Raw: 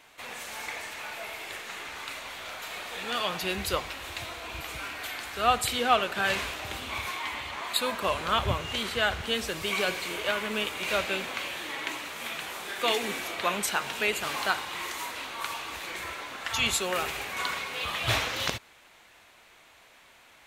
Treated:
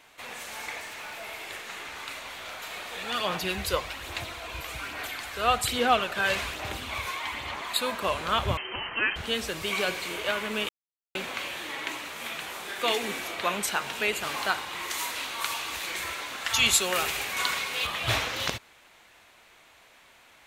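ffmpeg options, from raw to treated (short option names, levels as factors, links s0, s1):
-filter_complex "[0:a]asettb=1/sr,asplit=3[s0][s1][s2];[s0]atrim=end=0.804[s3];[s1]atrim=start=0.8:end=1.28,asetpts=PTS-STARTPTS,afade=t=in:d=0.004:c=qsin,afade=t=out:st=0.476:d=0.004:c=qsin,asoftclip=type=hard:threshold=0.0178[s4];[s2]atrim=start=1.276[s5];[s3][s4]acrossfade=d=0.004:c1=hsin:c2=qsin[s6];[s6][s5]acrossfade=d=0.004:c1=qsin:c2=hsin,asplit=3[s7][s8][s9];[s7]afade=t=out:st=2.99:d=0.02[s10];[s8]aphaser=in_gain=1:out_gain=1:delay=2:decay=0.34:speed=1.2:type=sinusoidal,afade=t=in:st=2.99:d=0.02,afade=t=out:st=7.73:d=0.02[s11];[s9]afade=t=in:st=7.73:d=0.02[s12];[s10][s11][s12]amix=inputs=3:normalize=0,asettb=1/sr,asplit=3[s13][s14][s15];[s13]atrim=end=8.574[s16];[s14]atrim=start=8.57:end=9.16,asetpts=PTS-STARTPTS,afade=t=in:d=0.004:c=qsin,afade=t=out:st=0.586:d=0.004:c=qsin,lowpass=f=2700:t=q:w=0.5098,lowpass=f=2700:t=q:w=0.6013,lowpass=f=2700:t=q:w=0.9,lowpass=f=2700:t=q:w=2.563,afreqshift=-3200[s17];[s15]atrim=start=9.156[s18];[s16][s17]acrossfade=d=0.004:c1=hsin:c2=qsin[s19];[s19][s18]acrossfade=d=0.004:c1=qsin:c2=hsin,asettb=1/sr,asplit=3[s20][s21][s22];[s20]atrim=end=14.904[s23];[s21]atrim=start=14.9:end=17.87,asetpts=PTS-STARTPTS,afade=t=in:d=0.004:c=qsin,afade=t=out:st=2.966:d=0.004:c=qsin,highshelf=f=2400:g=7.5[s24];[s22]atrim=start=17.866[s25];[s23][s24]acrossfade=d=0.004:c1=hsin:c2=qsin[s26];[s26][s25]acrossfade=d=0.004:c1=qsin:c2=hsin,asplit=3[s27][s28][s29];[s27]atrim=end=10.69,asetpts=PTS-STARTPTS,afade=t=out:st=10.686:d=0.004:c=hsin[s30];[s28]atrim=start=10.69:end=11.15,asetpts=PTS-STARTPTS,volume=0[s31];[s29]atrim=start=11.15,asetpts=PTS-STARTPTS,afade=t=in:d=0.004:c=hsin[s32];[s30][s31][s32]concat=n=3:v=0:a=1"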